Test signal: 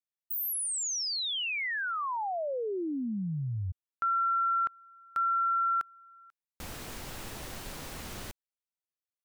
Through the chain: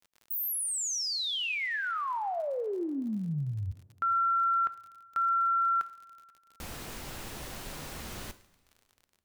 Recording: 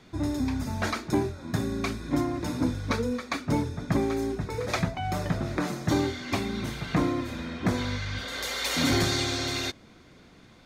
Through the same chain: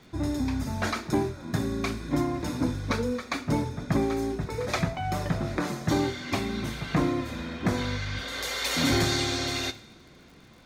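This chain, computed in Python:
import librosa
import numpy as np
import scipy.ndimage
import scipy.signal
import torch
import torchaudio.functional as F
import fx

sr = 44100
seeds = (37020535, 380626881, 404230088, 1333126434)

y = fx.rev_double_slope(x, sr, seeds[0], early_s=0.59, late_s=2.6, knee_db=-18, drr_db=11.5)
y = fx.dmg_crackle(y, sr, seeds[1], per_s=50.0, level_db=-45.0)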